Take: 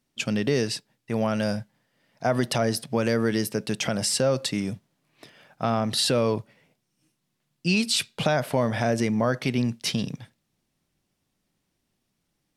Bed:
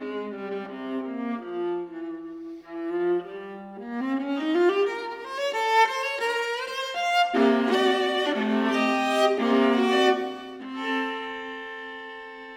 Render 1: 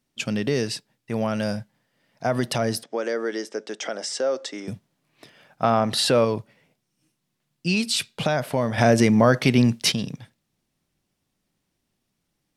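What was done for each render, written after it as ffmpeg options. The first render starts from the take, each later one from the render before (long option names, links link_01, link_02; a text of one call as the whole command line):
ffmpeg -i in.wav -filter_complex "[0:a]asettb=1/sr,asplit=3[link_01][link_02][link_03];[link_01]atrim=end=2.834[link_04];[link_02]atrim=start=2.83:end=4.68,asetpts=PTS-STARTPTS,afade=type=in:duration=0.004:curve=qsin,afade=type=out:start_time=1.846:duration=0.004:curve=qsin,highpass=frequency=320:width=0.5412,highpass=frequency=320:width=1.3066,equalizer=frequency=1000:width_type=q:width=4:gain=-4,equalizer=frequency=2600:width_type=q:width=4:gain=-9,equalizer=frequency=4300:width_type=q:width=4:gain=-9,lowpass=frequency=6800:width=0.5412,lowpass=frequency=6800:width=1.3066[link_05];[link_03]atrim=start=4.676[link_06];[link_04][link_05]acrossfade=duration=0.004:curve1=hsin:curve2=qsin[link_07];[link_07][link_06]acrossfade=duration=0.004:curve1=qsin:curve2=hsin,asettb=1/sr,asplit=3[link_08][link_09][link_10];[link_08]atrim=end=5.634[link_11];[link_09]atrim=start=5.63:end=6.25,asetpts=PTS-STARTPTS,afade=type=in:duration=0.004:curve=qsin,afade=type=out:start_time=0.616:duration=0.004:curve=qsin,equalizer=frequency=900:width_type=o:width=2.8:gain=6.5[link_12];[link_10]atrim=start=6.246[link_13];[link_11][link_12]acrossfade=duration=0.004:curve1=hsin:curve2=qsin[link_14];[link_14][link_13]acrossfade=duration=0.004:curve1=qsin:curve2=hsin,asplit=3[link_15][link_16][link_17];[link_15]atrim=end=8.782[link_18];[link_16]atrim=start=8.778:end=9.922,asetpts=PTS-STARTPTS,volume=7dB[link_19];[link_17]atrim=start=9.918[link_20];[link_18][link_19]acrossfade=duration=0.004:curve1=hsin:curve2=hsin[link_21];[link_21][link_20]acrossfade=duration=0.004:curve1=hsin:curve2=hsin" out.wav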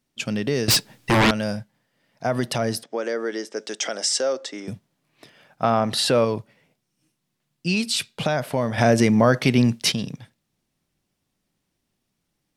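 ffmpeg -i in.wav -filter_complex "[0:a]asettb=1/sr,asplit=3[link_01][link_02][link_03];[link_01]atrim=end=0.684[link_04];[link_02]atrim=start=0.68:end=1.31,asetpts=PTS-STARTPTS,afade=type=in:duration=0.004:curve=qsin,afade=type=out:start_time=0.626:duration=0.004:curve=qsin,aeval=exprs='0.224*sin(PI/2*5.62*val(0)/0.224)':channel_layout=same[link_05];[link_03]atrim=start=1.306[link_06];[link_04][link_05]acrossfade=duration=0.004:curve1=hsin:curve2=qsin[link_07];[link_07][link_06]acrossfade=duration=0.004:curve1=qsin:curve2=hsin,asettb=1/sr,asplit=3[link_08][link_09][link_10];[link_08]atrim=end=3.564[link_11];[link_09]atrim=start=3.56:end=4.33,asetpts=PTS-STARTPTS,afade=type=in:duration=0.004:curve=qsin,afade=type=out:start_time=0.766:duration=0.004:curve=qsin,highshelf=frequency=3100:gain=10.5[link_12];[link_10]atrim=start=4.326[link_13];[link_11][link_12]acrossfade=duration=0.004:curve1=hsin:curve2=qsin[link_14];[link_14][link_13]acrossfade=duration=0.004:curve1=qsin:curve2=hsin" out.wav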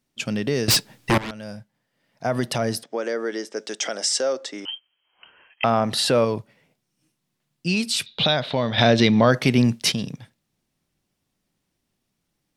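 ffmpeg -i in.wav -filter_complex "[0:a]asettb=1/sr,asplit=3[link_01][link_02][link_03];[link_01]atrim=end=4.654[link_04];[link_02]atrim=start=4.65:end=5.64,asetpts=PTS-STARTPTS,afade=type=in:duration=0.004:curve=qsin,afade=type=out:start_time=0.986:duration=0.004:curve=qsin,lowpass=frequency=2800:width_type=q:width=0.5098,lowpass=frequency=2800:width_type=q:width=0.6013,lowpass=frequency=2800:width_type=q:width=0.9,lowpass=frequency=2800:width_type=q:width=2.563,afreqshift=-3300[link_05];[link_03]atrim=start=5.636[link_06];[link_04][link_05]acrossfade=duration=0.004:curve1=hsin:curve2=qsin[link_07];[link_07][link_06]acrossfade=duration=0.004:curve1=qsin:curve2=hsin,asettb=1/sr,asplit=3[link_08][link_09][link_10];[link_08]atrim=end=8.064[link_11];[link_09]atrim=start=8.06:end=9.31,asetpts=PTS-STARTPTS,afade=type=in:duration=0.004:curve=qsin,afade=type=out:start_time=1.246:duration=0.004:curve=qsin,lowpass=frequency=3800:width_type=q:width=9.4[link_12];[link_10]atrim=start=9.306[link_13];[link_11][link_12]acrossfade=duration=0.004:curve1=hsin:curve2=qsin[link_14];[link_14][link_13]acrossfade=duration=0.004:curve1=qsin:curve2=hsin,asplit=2[link_15][link_16];[link_15]atrim=end=1.18,asetpts=PTS-STARTPTS,afade=type=out:start_time=1.176:duration=0.004:curve=hsin:silence=0.105925[link_17];[link_16]atrim=start=1.18,asetpts=PTS-STARTPTS,afade=type=in:duration=1.17:silence=0.105925[link_18];[link_17][link_18]concat=n=2:v=0:a=1" out.wav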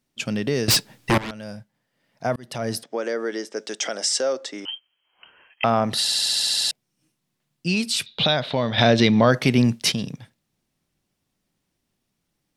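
ffmpeg -i in.wav -filter_complex "[0:a]asplit=12[link_01][link_02][link_03][link_04][link_05][link_06][link_07][link_08][link_09][link_10][link_11][link_12];[link_01]atrim=end=2.36,asetpts=PTS-STARTPTS,afade=type=out:start_time=2.356:duration=0.004:curve=hsin[link_13];[link_02]atrim=start=2.36:end=6.082,asetpts=PTS-STARTPTS,afade=type=in:duration=0.41[link_14];[link_03]atrim=start=6.008:end=6.082[link_15];[link_04]atrim=start=6.008:end=6.082[link_16];[link_05]atrim=start=6.008:end=6.082[link_17];[link_06]atrim=start=6.008:end=6.082[link_18];[link_07]atrim=start=6.008:end=6.082[link_19];[link_08]atrim=start=6.008:end=6.082[link_20];[link_09]atrim=start=6.008:end=6.082[link_21];[link_10]atrim=start=6.008:end=6.082[link_22];[link_11]atrim=start=6.008:end=6.082[link_23];[link_12]atrim=start=6.708[link_24];[link_13][link_14]concat=n=2:v=0:a=1[link_25];[link_25][link_15]acrossfade=duration=0.004:curve1=hsin:curve2=hsin[link_26];[link_26][link_16]acrossfade=duration=0.004:curve1=hsin:curve2=hsin[link_27];[link_27][link_17]acrossfade=duration=0.004:curve1=hsin:curve2=hsin[link_28];[link_28][link_18]acrossfade=duration=0.004:curve1=hsin:curve2=hsin[link_29];[link_29][link_19]acrossfade=duration=0.004:curve1=hsin:curve2=hsin[link_30];[link_30][link_20]acrossfade=duration=0.004:curve1=hsin:curve2=hsin[link_31];[link_31][link_21]acrossfade=duration=0.004:curve1=hsin:curve2=hsin[link_32];[link_32][link_22]acrossfade=duration=0.004:curve1=hsin:curve2=hsin[link_33];[link_33][link_23]acrossfade=duration=0.004:curve1=hsin:curve2=hsin[link_34];[link_34][link_24]acrossfade=duration=0.004:curve1=hsin:curve2=hsin" out.wav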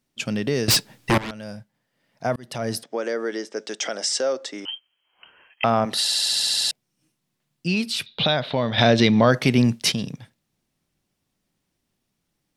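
ffmpeg -i in.wav -filter_complex "[0:a]asettb=1/sr,asplit=3[link_01][link_02][link_03];[link_01]atrim=end=3.374[link_04];[link_02]atrim=start=3.37:end=4.41,asetpts=PTS-STARTPTS,afade=type=in:duration=0.004:curve=qsin,afade=type=out:start_time=1.036:duration=0.004:curve=qsin,equalizer=frequency=14000:width_type=o:width=0.77:gain=-10[link_05];[link_03]atrim=start=4.406[link_06];[link_04][link_05]acrossfade=duration=0.004:curve1=hsin:curve2=qsin[link_07];[link_07][link_06]acrossfade=duration=0.004:curve1=qsin:curve2=hsin,asettb=1/sr,asplit=3[link_08][link_09][link_10];[link_08]atrim=end=5.854[link_11];[link_09]atrim=start=5.85:end=6.31,asetpts=PTS-STARTPTS,afade=type=in:duration=0.004:curve=qsin,afade=type=out:start_time=0.456:duration=0.004:curve=qsin,highpass=240[link_12];[link_10]atrim=start=6.306[link_13];[link_11][link_12]acrossfade=duration=0.004:curve1=hsin:curve2=qsin[link_14];[link_14][link_13]acrossfade=duration=0.004:curve1=qsin:curve2=hsin,asettb=1/sr,asplit=3[link_15][link_16][link_17];[link_15]atrim=end=7.674[link_18];[link_16]atrim=start=7.67:end=8.72,asetpts=PTS-STARTPTS,afade=type=in:duration=0.004:curve=qsin,afade=type=out:start_time=1.046:duration=0.004:curve=qsin,equalizer=frequency=7800:width=1.1:gain=-8[link_19];[link_17]atrim=start=8.716[link_20];[link_18][link_19]acrossfade=duration=0.004:curve1=hsin:curve2=qsin[link_21];[link_21][link_20]acrossfade=duration=0.004:curve1=qsin:curve2=hsin" out.wav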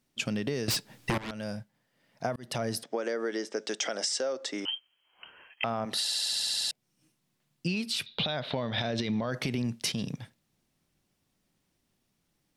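ffmpeg -i in.wav -af "alimiter=limit=-12dB:level=0:latency=1,acompressor=threshold=-28dB:ratio=6" out.wav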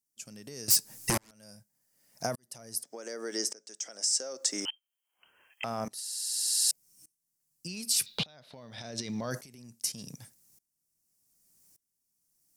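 ffmpeg -i in.wav -af "aexciter=amount=8.1:drive=6.4:freq=5100,aeval=exprs='val(0)*pow(10,-25*if(lt(mod(-0.85*n/s,1),2*abs(-0.85)/1000),1-mod(-0.85*n/s,1)/(2*abs(-0.85)/1000),(mod(-0.85*n/s,1)-2*abs(-0.85)/1000)/(1-2*abs(-0.85)/1000))/20)':channel_layout=same" out.wav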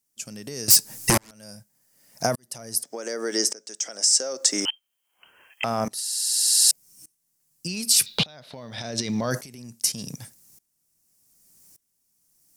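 ffmpeg -i in.wav -af "volume=9dB,alimiter=limit=-2dB:level=0:latency=1" out.wav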